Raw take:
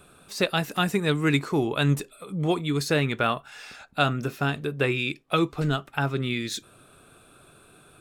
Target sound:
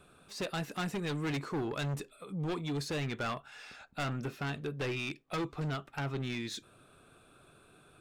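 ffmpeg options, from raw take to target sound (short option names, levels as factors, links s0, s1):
-af "asoftclip=type=tanh:threshold=0.0708,highshelf=f=8700:g=-9.5,aeval=exprs='0.0596*(abs(mod(val(0)/0.0596+3,4)-2)-1)':c=same,volume=0.501"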